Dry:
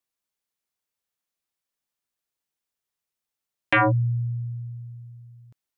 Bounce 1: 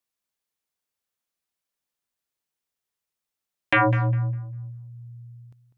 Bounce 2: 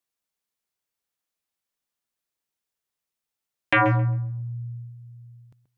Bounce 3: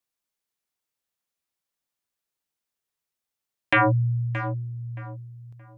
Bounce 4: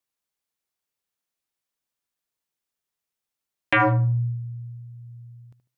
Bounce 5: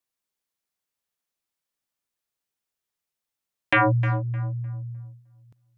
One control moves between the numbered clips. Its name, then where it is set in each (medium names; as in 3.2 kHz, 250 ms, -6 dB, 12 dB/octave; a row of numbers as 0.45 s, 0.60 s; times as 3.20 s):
tape echo, time: 200 ms, 131 ms, 623 ms, 74 ms, 305 ms